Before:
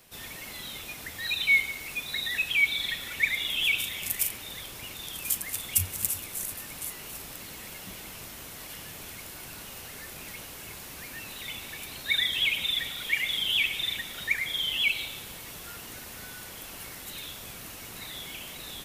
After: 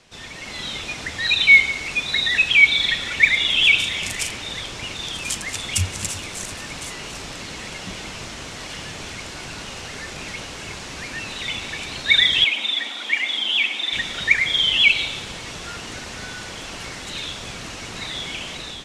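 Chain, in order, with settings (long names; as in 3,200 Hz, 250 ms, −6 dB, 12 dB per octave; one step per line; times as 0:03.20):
low-pass filter 7,200 Hz 24 dB per octave
automatic gain control gain up to 6 dB
0:12.44–0:13.93: Chebyshev high-pass with heavy ripple 210 Hz, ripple 6 dB
level +5 dB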